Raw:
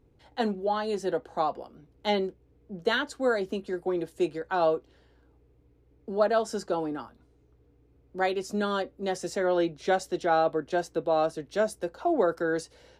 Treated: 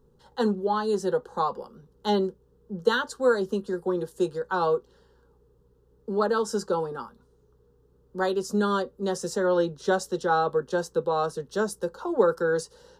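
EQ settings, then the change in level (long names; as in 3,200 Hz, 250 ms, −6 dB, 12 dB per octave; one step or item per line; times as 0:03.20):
phaser with its sweep stopped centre 450 Hz, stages 8
+5.5 dB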